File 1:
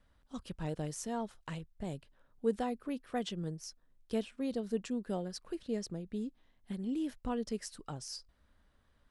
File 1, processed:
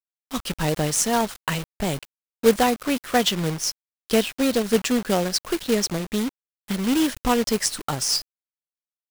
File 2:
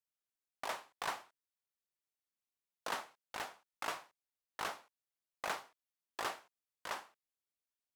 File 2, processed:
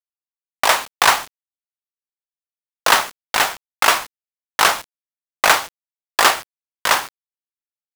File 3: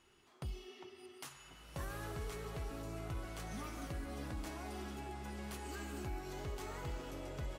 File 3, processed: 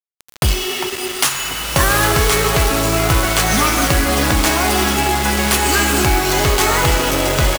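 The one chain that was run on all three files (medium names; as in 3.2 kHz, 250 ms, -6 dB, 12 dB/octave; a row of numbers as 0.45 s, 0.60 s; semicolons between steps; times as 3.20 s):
resampled via 32 kHz; tilt shelf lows -4.5 dB, about 740 Hz; companded quantiser 4-bit; peak normalisation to -1.5 dBFS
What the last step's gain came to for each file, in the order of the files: +17.0 dB, +23.0 dB, +29.5 dB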